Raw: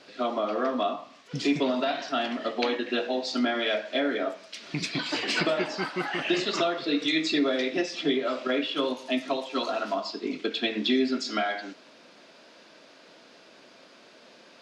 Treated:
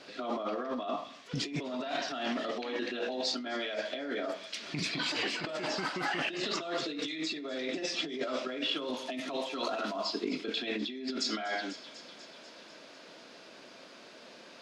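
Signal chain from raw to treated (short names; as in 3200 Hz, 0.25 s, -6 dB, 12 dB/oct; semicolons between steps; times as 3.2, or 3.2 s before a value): thin delay 0.246 s, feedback 68%, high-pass 5000 Hz, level -9 dB; negative-ratio compressor -32 dBFS, ratio -1; gain -3 dB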